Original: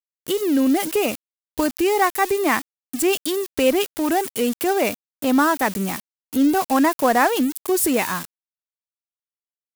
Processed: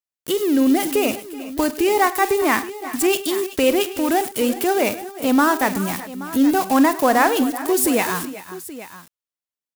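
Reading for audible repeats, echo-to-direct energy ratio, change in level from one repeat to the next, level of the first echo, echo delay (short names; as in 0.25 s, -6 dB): 4, -10.0 dB, no steady repeat, -15.0 dB, 45 ms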